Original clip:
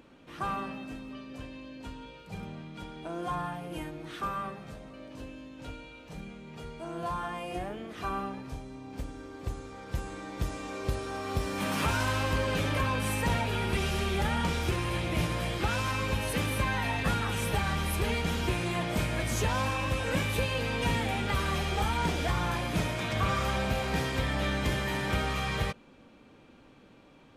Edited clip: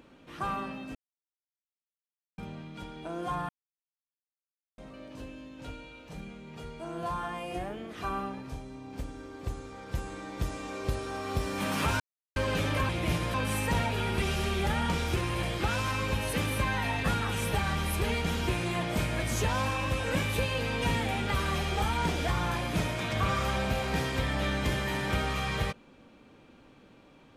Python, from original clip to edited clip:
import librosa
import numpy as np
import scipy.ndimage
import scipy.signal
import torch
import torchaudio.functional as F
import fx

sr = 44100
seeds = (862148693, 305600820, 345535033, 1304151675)

y = fx.edit(x, sr, fx.silence(start_s=0.95, length_s=1.43),
    fx.silence(start_s=3.49, length_s=1.29),
    fx.silence(start_s=12.0, length_s=0.36),
    fx.move(start_s=14.98, length_s=0.45, to_s=12.89), tone=tone)